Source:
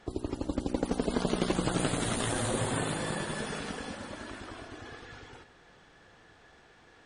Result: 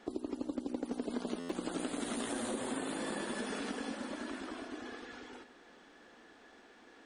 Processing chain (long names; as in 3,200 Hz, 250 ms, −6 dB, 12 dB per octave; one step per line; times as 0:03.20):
low shelf with overshoot 180 Hz −10.5 dB, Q 3
downward compressor 5 to 1, threshold −33 dBFS, peak gain reduction 12 dB
buffer that repeats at 0:01.39, samples 512, times 8
level −1.5 dB